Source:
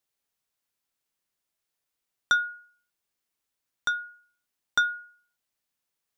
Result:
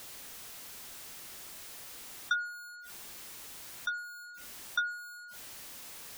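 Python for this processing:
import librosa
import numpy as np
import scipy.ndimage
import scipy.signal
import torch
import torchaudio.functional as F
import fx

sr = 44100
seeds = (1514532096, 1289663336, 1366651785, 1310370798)

y = x + 0.5 * 10.0 ** (-32.5 / 20.0) * np.sign(x)
y = fx.room_early_taps(y, sr, ms=(24, 46), db=(-16.0, -16.5))
y = fx.spec_gate(y, sr, threshold_db=-25, keep='strong')
y = F.gain(torch.from_numpy(y), -8.0).numpy()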